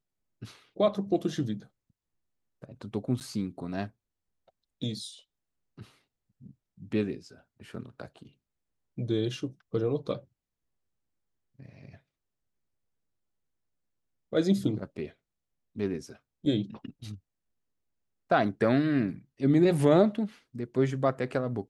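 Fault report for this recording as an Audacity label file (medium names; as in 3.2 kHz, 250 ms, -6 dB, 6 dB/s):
3.200000	3.210000	dropout 8.6 ms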